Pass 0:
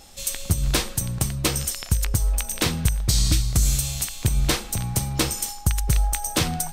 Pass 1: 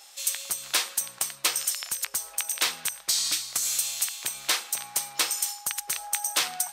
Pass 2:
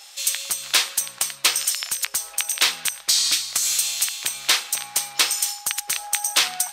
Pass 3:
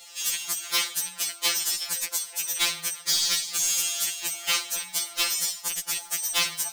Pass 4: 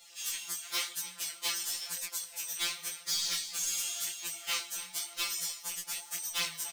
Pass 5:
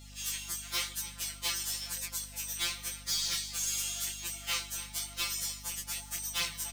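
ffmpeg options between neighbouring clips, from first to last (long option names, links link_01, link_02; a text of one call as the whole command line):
ffmpeg -i in.wav -af "highpass=950" out.wav
ffmpeg -i in.wav -af "equalizer=frequency=3300:width_type=o:width=2.5:gain=5.5,volume=2.5dB" out.wav
ffmpeg -i in.wav -af "asoftclip=type=hard:threshold=-15dB,acrusher=bits=3:mode=log:mix=0:aa=0.000001,afftfilt=real='re*2.83*eq(mod(b,8),0)':imag='im*2.83*eq(mod(b,8),0)':win_size=2048:overlap=0.75" out.wav
ffmpeg -i in.wav -af "flanger=delay=16.5:depth=6.1:speed=0.95,aecho=1:1:293|586|879:0.112|0.0471|0.0198,volume=-5.5dB" out.wav
ffmpeg -i in.wav -af "aeval=exprs='val(0)+0.00316*(sin(2*PI*50*n/s)+sin(2*PI*2*50*n/s)/2+sin(2*PI*3*50*n/s)/3+sin(2*PI*4*50*n/s)/4+sin(2*PI*5*50*n/s)/5)':channel_layout=same" out.wav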